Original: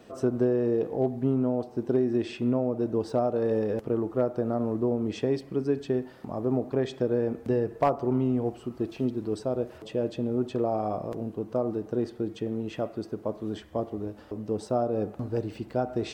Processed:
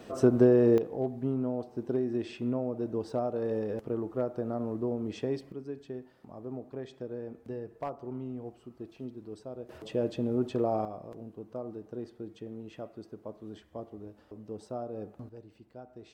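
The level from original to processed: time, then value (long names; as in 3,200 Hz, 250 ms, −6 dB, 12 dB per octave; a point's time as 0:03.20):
+3.5 dB
from 0:00.78 −5.5 dB
from 0:05.52 −13 dB
from 0:09.69 −1.5 dB
from 0:10.85 −11 dB
from 0:15.29 −19.5 dB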